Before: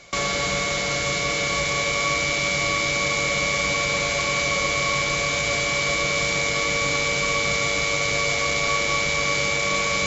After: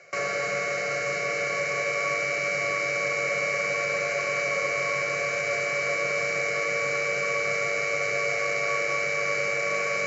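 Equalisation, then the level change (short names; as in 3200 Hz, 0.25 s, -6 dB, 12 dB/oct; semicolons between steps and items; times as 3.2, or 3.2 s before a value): Bessel high-pass 200 Hz, order 4; LPF 4600 Hz 12 dB/oct; fixed phaser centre 940 Hz, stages 6; 0.0 dB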